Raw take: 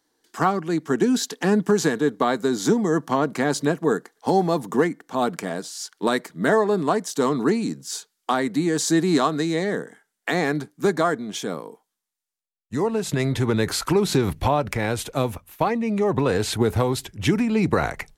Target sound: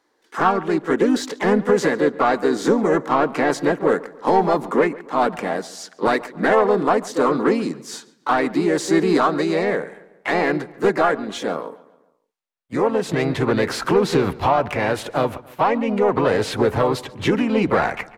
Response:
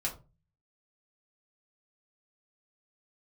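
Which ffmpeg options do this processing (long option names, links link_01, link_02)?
-filter_complex "[0:a]asplit=2[link_01][link_02];[link_02]highpass=frequency=720:poles=1,volume=15dB,asoftclip=type=tanh:threshold=-6.5dB[link_03];[link_01][link_03]amix=inputs=2:normalize=0,lowpass=frequency=1200:poles=1,volume=-6dB,asplit=2[link_04][link_05];[link_05]asetrate=52444,aresample=44100,atempo=0.840896,volume=-5dB[link_06];[link_04][link_06]amix=inputs=2:normalize=0,asplit=2[link_07][link_08];[link_08]adelay=140,lowpass=frequency=3700:poles=1,volume=-19.5dB,asplit=2[link_09][link_10];[link_10]adelay=140,lowpass=frequency=3700:poles=1,volume=0.47,asplit=2[link_11][link_12];[link_12]adelay=140,lowpass=frequency=3700:poles=1,volume=0.47,asplit=2[link_13][link_14];[link_14]adelay=140,lowpass=frequency=3700:poles=1,volume=0.47[link_15];[link_07][link_09][link_11][link_13][link_15]amix=inputs=5:normalize=0"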